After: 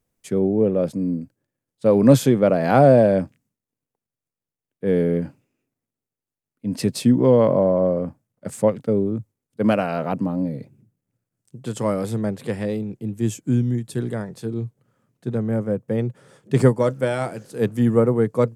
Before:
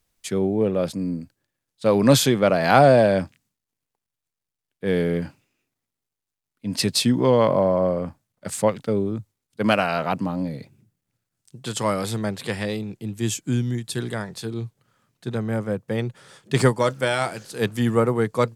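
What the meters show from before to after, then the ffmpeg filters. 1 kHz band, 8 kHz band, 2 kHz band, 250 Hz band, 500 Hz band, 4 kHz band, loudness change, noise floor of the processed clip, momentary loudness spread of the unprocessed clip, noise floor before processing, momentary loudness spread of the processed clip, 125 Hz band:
-3.0 dB, -7.0 dB, -6.0 dB, +3.5 dB, +2.0 dB, -10.0 dB, +1.5 dB, under -85 dBFS, 15 LU, -85 dBFS, 15 LU, +2.5 dB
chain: -af "equalizer=f=125:t=o:w=1:g=7,equalizer=f=250:t=o:w=1:g=7,equalizer=f=500:t=o:w=1:g=7,equalizer=f=4k:t=o:w=1:g=-6,volume=-5.5dB"

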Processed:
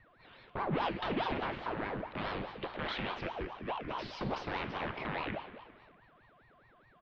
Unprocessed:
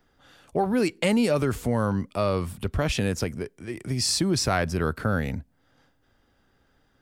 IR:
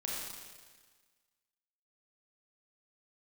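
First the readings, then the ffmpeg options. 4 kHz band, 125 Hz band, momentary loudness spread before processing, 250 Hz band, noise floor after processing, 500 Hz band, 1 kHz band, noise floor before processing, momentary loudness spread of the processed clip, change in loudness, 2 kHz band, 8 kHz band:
-12.0 dB, -16.0 dB, 9 LU, -14.5 dB, -64 dBFS, -12.5 dB, -4.5 dB, -67 dBFS, 8 LU, -12.0 dB, -7.0 dB, under -35 dB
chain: -filter_complex "[0:a]equalizer=f=820:w=1.2:g=-8.5,acrossover=split=350|1500[a][b][c];[a]acompressor=threshold=-30dB:ratio=4[d];[b]acompressor=threshold=-40dB:ratio=4[e];[c]acompressor=threshold=-34dB:ratio=4[f];[d][e][f]amix=inputs=3:normalize=0,aeval=exprs='val(0)+0.00112*sin(2*PI*1100*n/s)':c=same,aeval=exprs='0.0398*(abs(mod(val(0)/0.0398+3,4)-2)-1)':c=same,aecho=1:1:321|642|963:0.112|0.0381|0.013,asplit=2[g][h];[1:a]atrim=start_sample=2205,asetrate=57330,aresample=44100[i];[h][i]afir=irnorm=-1:irlink=0,volume=-2.5dB[j];[g][j]amix=inputs=2:normalize=0,highpass=f=200:t=q:w=0.5412,highpass=f=200:t=q:w=1.307,lowpass=f=3.5k:t=q:w=0.5176,lowpass=f=3.5k:t=q:w=0.7071,lowpass=f=3.5k:t=q:w=1.932,afreqshift=-220,aeval=exprs='val(0)*sin(2*PI*580*n/s+580*0.75/4.8*sin(2*PI*4.8*n/s))':c=same"

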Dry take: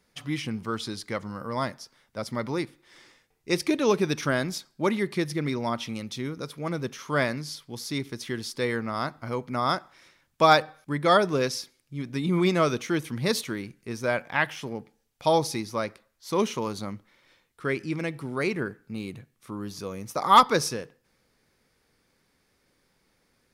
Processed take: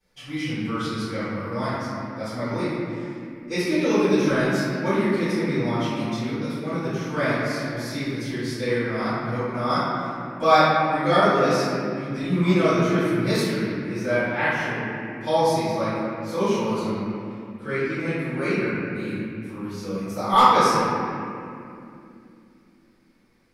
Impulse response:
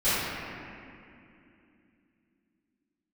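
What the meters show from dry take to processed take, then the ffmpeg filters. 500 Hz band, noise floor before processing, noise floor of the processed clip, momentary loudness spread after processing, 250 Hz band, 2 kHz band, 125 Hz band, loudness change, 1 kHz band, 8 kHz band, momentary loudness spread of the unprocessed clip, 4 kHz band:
+4.0 dB, -70 dBFS, -53 dBFS, 12 LU, +5.5 dB, +4.0 dB, +5.0 dB, +3.5 dB, +3.5 dB, -1.5 dB, 15 LU, +0.5 dB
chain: -filter_complex "[1:a]atrim=start_sample=2205[a];[0:a][a]afir=irnorm=-1:irlink=0,volume=-12dB"

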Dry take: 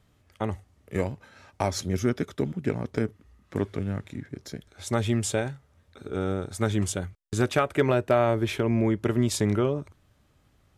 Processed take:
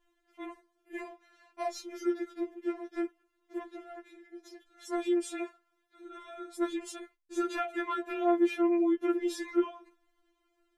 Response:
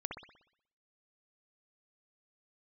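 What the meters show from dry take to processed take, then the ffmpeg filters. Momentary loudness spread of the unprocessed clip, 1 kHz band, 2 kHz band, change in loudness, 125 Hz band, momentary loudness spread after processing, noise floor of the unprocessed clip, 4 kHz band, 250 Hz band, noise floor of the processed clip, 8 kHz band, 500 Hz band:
15 LU, -5.0 dB, -7.5 dB, -5.0 dB, under -40 dB, 21 LU, -64 dBFS, -10.0 dB, -3.5 dB, -77 dBFS, -13.0 dB, -6.5 dB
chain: -filter_complex "[0:a]asplit=2[a][b];[b]adynamicsmooth=sensitivity=0.5:basefreq=4.3k,volume=0.5dB[c];[a][c]amix=inputs=2:normalize=0,flanger=delay=6.1:depth=8:regen=-75:speed=0.58:shape=sinusoidal,afftfilt=real='re*4*eq(mod(b,16),0)':imag='im*4*eq(mod(b,16),0)':win_size=2048:overlap=0.75,volume=-5dB"

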